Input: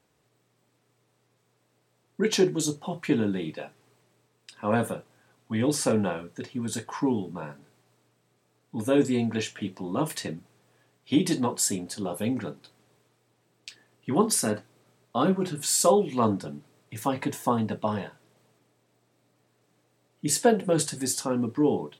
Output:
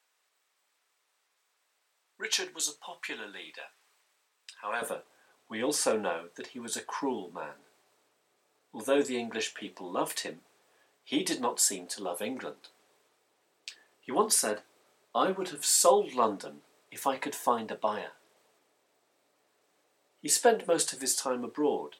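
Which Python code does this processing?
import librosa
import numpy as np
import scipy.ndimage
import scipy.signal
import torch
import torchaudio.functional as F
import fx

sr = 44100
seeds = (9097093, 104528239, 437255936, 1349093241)

y = fx.highpass(x, sr, hz=fx.steps((0.0, 1100.0), (4.82, 450.0)), slope=12)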